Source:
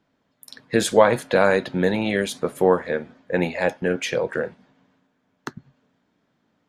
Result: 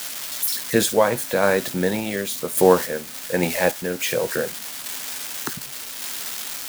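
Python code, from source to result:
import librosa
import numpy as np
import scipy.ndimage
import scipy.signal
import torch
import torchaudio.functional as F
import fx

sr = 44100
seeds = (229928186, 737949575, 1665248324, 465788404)

p1 = x + 0.5 * 10.0 ** (-19.0 / 20.0) * np.diff(np.sign(x), prepend=np.sign(x[:1]))
p2 = fx.tremolo_random(p1, sr, seeds[0], hz=3.5, depth_pct=55)
p3 = fx.quant_dither(p2, sr, seeds[1], bits=6, dither='triangular')
p4 = p2 + (p3 * librosa.db_to_amplitude(-5.0))
y = p4 * librosa.db_to_amplitude(-1.0)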